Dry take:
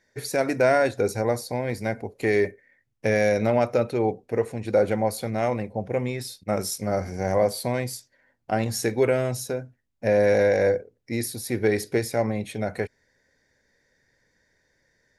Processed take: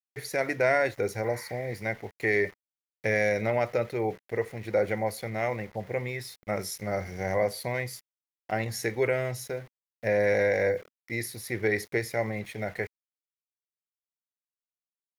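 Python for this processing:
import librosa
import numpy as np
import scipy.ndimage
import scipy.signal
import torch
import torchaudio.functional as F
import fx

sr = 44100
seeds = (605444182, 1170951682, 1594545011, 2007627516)

y = fx.spec_repair(x, sr, seeds[0], start_s=1.28, length_s=0.42, low_hz=860.0, high_hz=3800.0, source='both')
y = np.where(np.abs(y) >= 10.0 ** (-42.5 / 20.0), y, 0.0)
y = fx.graphic_eq_31(y, sr, hz=(250, 2000, 8000), db=(-8, 11, -6))
y = F.gain(torch.from_numpy(y), -5.0).numpy()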